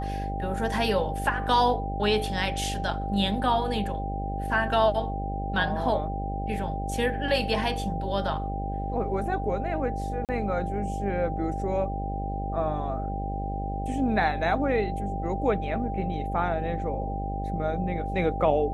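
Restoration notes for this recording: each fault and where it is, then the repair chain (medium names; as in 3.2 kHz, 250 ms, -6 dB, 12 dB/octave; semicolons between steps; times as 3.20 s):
buzz 50 Hz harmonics 14 -32 dBFS
whine 790 Hz -33 dBFS
10.25–10.29 s: dropout 38 ms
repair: band-stop 790 Hz, Q 30; de-hum 50 Hz, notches 14; interpolate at 10.25 s, 38 ms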